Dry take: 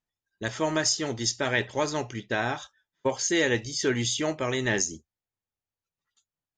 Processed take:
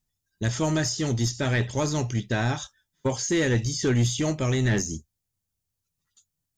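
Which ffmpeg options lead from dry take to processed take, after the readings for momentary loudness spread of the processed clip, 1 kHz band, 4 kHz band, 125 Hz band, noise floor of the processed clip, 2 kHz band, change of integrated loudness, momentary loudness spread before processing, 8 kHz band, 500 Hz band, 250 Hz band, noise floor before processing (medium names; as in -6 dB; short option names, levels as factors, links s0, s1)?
8 LU, -1.5 dB, -2.0 dB, +11.0 dB, -83 dBFS, -2.5 dB, +1.5 dB, 8 LU, -1.5 dB, -0.5 dB, +4.0 dB, under -85 dBFS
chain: -filter_complex "[0:a]acrossover=split=2600[s0][s1];[s1]acompressor=threshold=0.0126:ratio=4:attack=1:release=60[s2];[s0][s2]amix=inputs=2:normalize=0,bass=f=250:g=14,treble=f=4000:g=12,asoftclip=type=tanh:threshold=0.168"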